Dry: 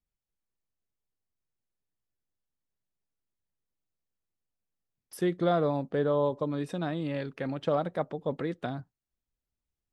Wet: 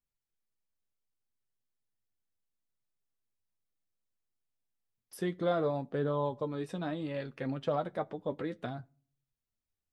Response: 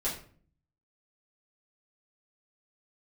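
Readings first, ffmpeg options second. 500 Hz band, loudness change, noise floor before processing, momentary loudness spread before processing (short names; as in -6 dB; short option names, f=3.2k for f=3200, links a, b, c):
-4.5 dB, -4.5 dB, under -85 dBFS, 9 LU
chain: -filter_complex "[0:a]flanger=delay=7.4:depth=2.9:regen=44:speed=0.66:shape=triangular,asplit=2[a][b];[1:a]atrim=start_sample=2205[c];[b][c]afir=irnorm=-1:irlink=0,volume=-27.5dB[d];[a][d]amix=inputs=2:normalize=0"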